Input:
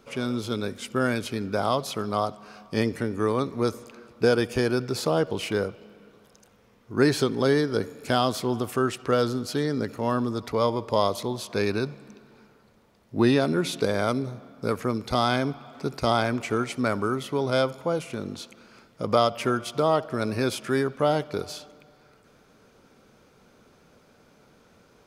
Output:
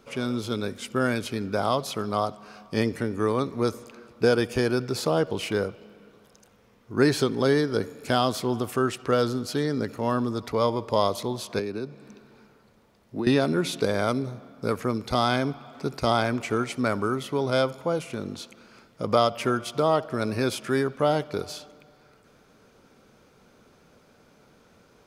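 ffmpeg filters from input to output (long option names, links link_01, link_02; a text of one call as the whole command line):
ffmpeg -i in.wav -filter_complex "[0:a]asettb=1/sr,asplit=3[link_01][link_02][link_03];[link_01]atrim=end=11.594[link_04];[link_02]atrim=start=11.59:end=13.27,asetpts=PTS-STARTPTS,afade=type=in:duration=0.004:curve=qsin,afade=type=out:start_time=1.676:duration=0.004:curve=qsin,acrossover=split=180|570[link_05][link_06][link_07];[link_05]acompressor=threshold=-46dB:ratio=4[link_08];[link_06]acompressor=threshold=-29dB:ratio=4[link_09];[link_07]acompressor=threshold=-44dB:ratio=4[link_10];[link_08][link_09][link_10]amix=inputs=3:normalize=0[link_11];[link_03]atrim=start=13.266[link_12];[link_04][link_11]acrossfade=duration=0.004:curve1=hsin:curve2=qsin[link_13];[link_13][link_12]acrossfade=duration=0.004:curve1=qsin:curve2=hsin" out.wav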